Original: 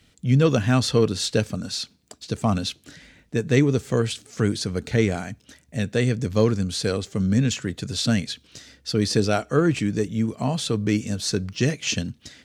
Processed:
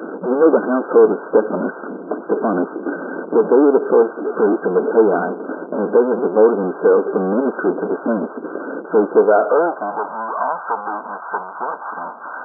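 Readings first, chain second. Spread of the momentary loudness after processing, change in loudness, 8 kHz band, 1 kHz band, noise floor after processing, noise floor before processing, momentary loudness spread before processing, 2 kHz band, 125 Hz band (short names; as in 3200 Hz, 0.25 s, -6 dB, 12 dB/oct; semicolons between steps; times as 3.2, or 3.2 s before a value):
13 LU, +6.0 dB, under -40 dB, +13.0 dB, -34 dBFS, -60 dBFS, 11 LU, +4.0 dB, -14.0 dB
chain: power-law curve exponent 0.35; FFT band-pass 170–1600 Hz; in parallel at -2 dB: compressor, threshold -21 dBFS, peak gain reduction 11.5 dB; on the sum: high-pass sweep 370 Hz -> 930 Hz, 9.08–10.13; gain -5 dB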